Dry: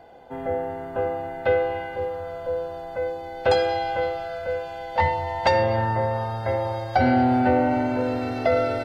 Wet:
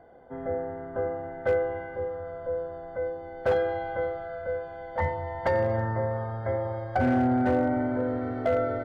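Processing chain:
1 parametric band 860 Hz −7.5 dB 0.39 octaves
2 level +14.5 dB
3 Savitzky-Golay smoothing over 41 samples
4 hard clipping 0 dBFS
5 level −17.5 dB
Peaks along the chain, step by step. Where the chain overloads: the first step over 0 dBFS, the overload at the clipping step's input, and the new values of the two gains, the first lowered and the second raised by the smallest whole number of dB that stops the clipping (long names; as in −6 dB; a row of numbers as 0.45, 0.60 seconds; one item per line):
−9.0, +5.5, +5.0, 0.0, −17.5 dBFS
step 2, 5.0 dB
step 2 +9.5 dB, step 5 −12.5 dB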